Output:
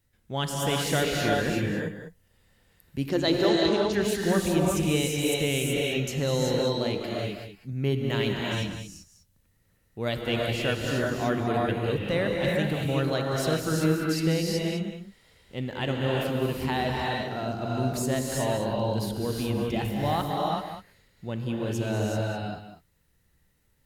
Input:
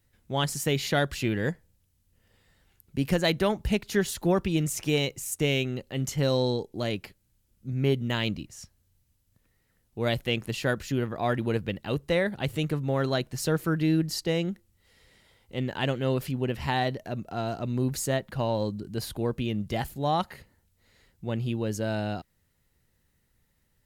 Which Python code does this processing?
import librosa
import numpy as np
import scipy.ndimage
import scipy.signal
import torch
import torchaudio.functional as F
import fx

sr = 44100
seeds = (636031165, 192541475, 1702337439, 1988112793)

y = fx.cabinet(x, sr, low_hz=130.0, low_slope=12, high_hz=7400.0, hz=(180.0, 340.0, 2400.0, 4100.0), db=(-8, 10, -9, 5), at=(3.08, 3.92), fade=0.02)
y = y + 10.0 ** (-10.5 / 20.0) * np.pad(y, (int(200 * sr / 1000.0), 0))[:len(y)]
y = fx.rev_gated(y, sr, seeds[0], gate_ms=410, shape='rising', drr_db=-2.0)
y = y * librosa.db_to_amplitude(-2.5)